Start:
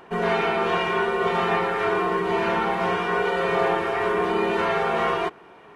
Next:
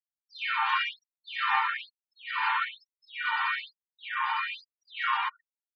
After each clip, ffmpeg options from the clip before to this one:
ffmpeg -i in.wav -af "afftfilt=real='re*gte(hypot(re,im),0.00891)':imag='im*gte(hypot(re,im),0.00891)':win_size=1024:overlap=0.75,afftfilt=real='re*gte(b*sr/1024,750*pow(6400/750,0.5+0.5*sin(2*PI*1.1*pts/sr)))':imag='im*gte(b*sr/1024,750*pow(6400/750,0.5+0.5*sin(2*PI*1.1*pts/sr)))':win_size=1024:overlap=0.75" out.wav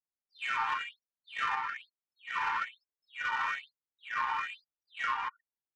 ffmpeg -i in.wav -af "alimiter=limit=-20.5dB:level=0:latency=1:release=437,adynamicsmooth=sensitivity=1.5:basefreq=1900" out.wav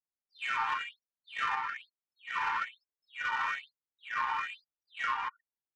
ffmpeg -i in.wav -af anull out.wav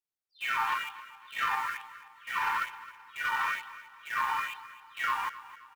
ffmpeg -i in.wav -filter_complex "[0:a]asplit=2[link_01][link_02];[link_02]acrusher=bits=6:mix=0:aa=0.000001,volume=-4dB[link_03];[link_01][link_03]amix=inputs=2:normalize=0,aecho=1:1:264|528|792|1056:0.158|0.0682|0.0293|0.0126,volume=-2dB" out.wav

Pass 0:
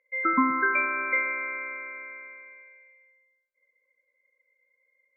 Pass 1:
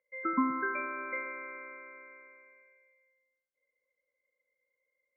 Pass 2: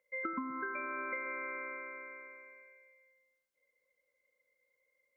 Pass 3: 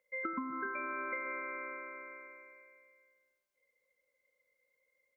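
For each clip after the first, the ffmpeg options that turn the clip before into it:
ffmpeg -i in.wav -af "lowpass=frequency=1300:poles=1,aemphasis=mode=reproduction:type=75kf,volume=-4dB" out.wav
ffmpeg -i in.wav -af "acompressor=threshold=-39dB:ratio=16,volume=4dB" out.wav
ffmpeg -i in.wav -af "aecho=1:1:276|552|828:0.168|0.0604|0.0218" out.wav

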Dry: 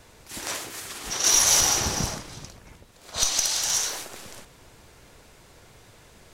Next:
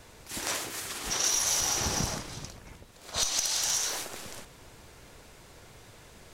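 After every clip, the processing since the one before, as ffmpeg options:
ffmpeg -i in.wav -af "acompressor=threshold=-25dB:ratio=5" out.wav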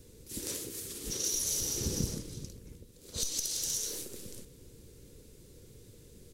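ffmpeg -i in.wav -af "firequalizer=gain_entry='entry(480,0);entry(680,-22);entry(3800,-8);entry(11000,0)':delay=0.05:min_phase=1" out.wav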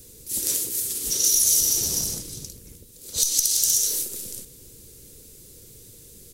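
ffmpeg -i in.wav -filter_complex "[0:a]acrossover=split=1800[link_01][link_02];[link_01]asoftclip=type=hard:threshold=-36.5dB[link_03];[link_03][link_02]amix=inputs=2:normalize=0,crystalizer=i=3:c=0,volume=2.5dB" out.wav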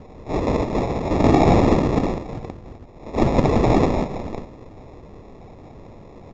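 ffmpeg -i in.wav -af "acrusher=samples=29:mix=1:aa=0.000001,aresample=16000,aresample=44100,tiltshelf=frequency=1400:gain=7" out.wav

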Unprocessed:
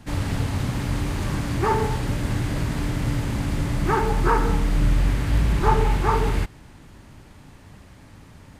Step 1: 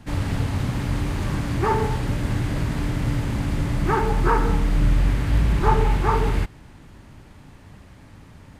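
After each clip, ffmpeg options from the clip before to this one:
ffmpeg -i in.wav -af "bass=frequency=250:gain=1,treble=frequency=4000:gain=-3" out.wav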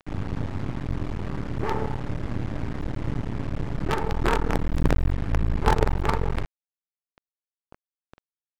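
ffmpeg -i in.wav -af "acrusher=bits=3:dc=4:mix=0:aa=0.000001,highshelf=frequency=2600:gain=-11.5,adynamicsmooth=sensitivity=5:basefreq=5400,volume=-1.5dB" out.wav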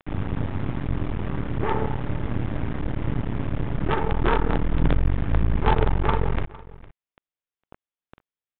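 ffmpeg -i in.wav -af "asoftclip=type=hard:threshold=-12dB,aecho=1:1:457:0.1,aresample=8000,aresample=44100,volume=2.5dB" out.wav

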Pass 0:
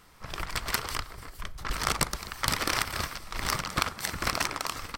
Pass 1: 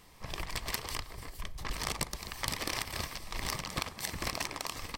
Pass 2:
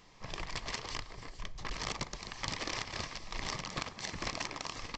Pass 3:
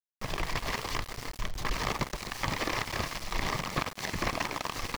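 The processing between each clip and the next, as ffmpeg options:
ffmpeg -i in.wav -af "equalizer=frequency=1400:width=5.3:gain=-14,acompressor=threshold=-35dB:ratio=2" out.wav
ffmpeg -i in.wav -af "equalizer=frequency=65:width=3.2:gain=-12.5,aresample=16000,aeval=exprs='clip(val(0),-1,0.0282)':channel_layout=same,aresample=44100,volume=-1dB" out.wav
ffmpeg -i in.wav -filter_complex "[0:a]acrossover=split=2600[link_01][link_02];[link_02]acompressor=threshold=-45dB:ratio=4:attack=1:release=60[link_03];[link_01][link_03]amix=inputs=2:normalize=0,aeval=exprs='val(0)*gte(abs(val(0)),0.00531)':channel_layout=same,volume=8.5dB" out.wav

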